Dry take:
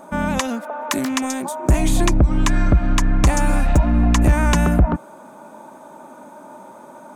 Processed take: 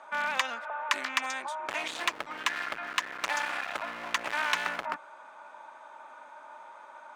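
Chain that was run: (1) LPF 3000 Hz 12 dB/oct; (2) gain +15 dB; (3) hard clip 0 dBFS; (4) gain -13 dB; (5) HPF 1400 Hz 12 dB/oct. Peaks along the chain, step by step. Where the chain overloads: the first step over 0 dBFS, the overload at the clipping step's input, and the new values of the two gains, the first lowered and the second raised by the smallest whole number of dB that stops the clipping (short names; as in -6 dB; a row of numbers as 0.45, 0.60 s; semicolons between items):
-7.5, +7.5, 0.0, -13.0, -10.0 dBFS; step 2, 7.5 dB; step 2 +7 dB, step 4 -5 dB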